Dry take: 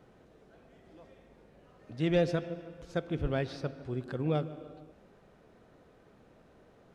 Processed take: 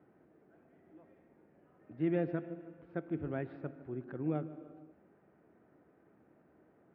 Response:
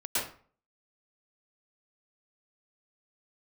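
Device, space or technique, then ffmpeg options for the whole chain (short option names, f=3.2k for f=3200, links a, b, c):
bass cabinet: -af "highpass=f=82:w=0.5412,highpass=f=82:w=1.3066,equalizer=f=110:t=q:w=4:g=-6,equalizer=f=320:t=q:w=4:g=7,equalizer=f=500:t=q:w=4:g=-4,equalizer=f=1.1k:t=q:w=4:g=-3,lowpass=f=2.1k:w=0.5412,lowpass=f=2.1k:w=1.3066,volume=-6dB"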